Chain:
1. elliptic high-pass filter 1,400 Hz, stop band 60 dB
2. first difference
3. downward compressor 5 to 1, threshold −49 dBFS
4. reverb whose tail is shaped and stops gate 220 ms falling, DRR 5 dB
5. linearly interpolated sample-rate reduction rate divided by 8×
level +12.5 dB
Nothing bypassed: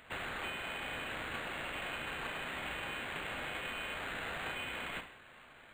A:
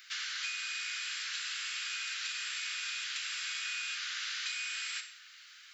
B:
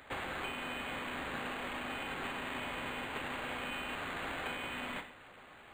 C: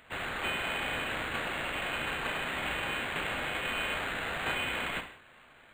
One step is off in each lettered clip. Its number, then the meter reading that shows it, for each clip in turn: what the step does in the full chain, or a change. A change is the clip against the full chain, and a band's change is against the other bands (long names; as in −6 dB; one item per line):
5, 1 kHz band −15.5 dB
1, 250 Hz band +5.0 dB
3, change in integrated loudness +6.5 LU